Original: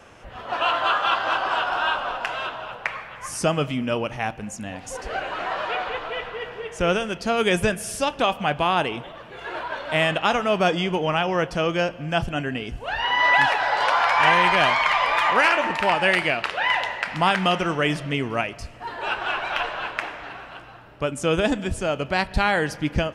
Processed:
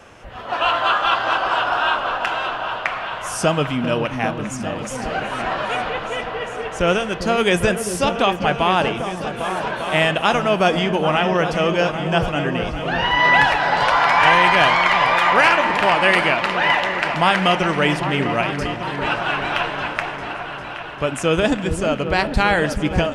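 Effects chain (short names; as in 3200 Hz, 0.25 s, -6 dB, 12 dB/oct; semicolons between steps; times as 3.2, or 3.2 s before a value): repeats that get brighter 0.399 s, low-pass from 400 Hz, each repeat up 2 oct, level -6 dB; gain +3.5 dB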